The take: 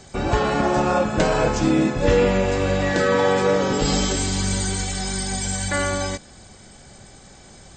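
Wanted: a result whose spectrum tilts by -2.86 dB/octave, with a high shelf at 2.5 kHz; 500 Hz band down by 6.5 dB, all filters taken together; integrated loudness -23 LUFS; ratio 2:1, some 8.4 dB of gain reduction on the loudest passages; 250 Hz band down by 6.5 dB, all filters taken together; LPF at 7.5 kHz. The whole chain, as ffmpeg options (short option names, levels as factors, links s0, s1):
-af "lowpass=7500,equalizer=f=250:t=o:g=-7.5,equalizer=f=500:t=o:g=-6,highshelf=f=2500:g=6.5,acompressor=threshold=0.0282:ratio=2,volume=1.88"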